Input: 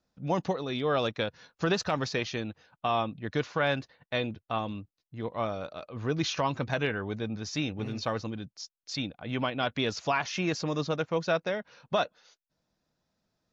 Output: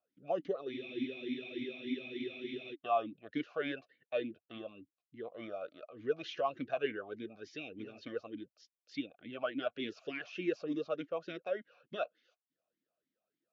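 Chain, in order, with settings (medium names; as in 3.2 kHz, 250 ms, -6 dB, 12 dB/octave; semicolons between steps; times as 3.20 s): spectral freeze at 0.74 s, 1.98 s; talking filter a-i 3.4 Hz; trim +2.5 dB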